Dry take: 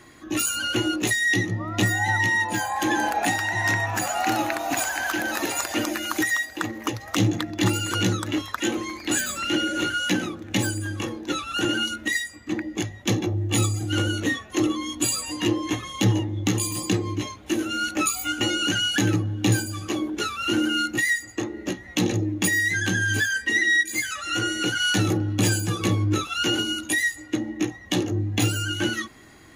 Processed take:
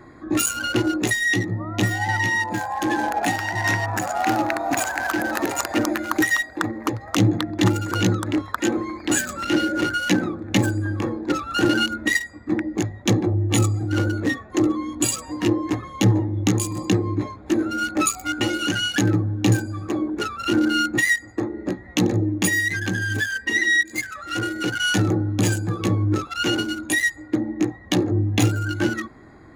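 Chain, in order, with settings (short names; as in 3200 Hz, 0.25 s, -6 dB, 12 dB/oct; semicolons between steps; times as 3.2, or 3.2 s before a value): Wiener smoothing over 15 samples; vocal rider 2 s; gain +3 dB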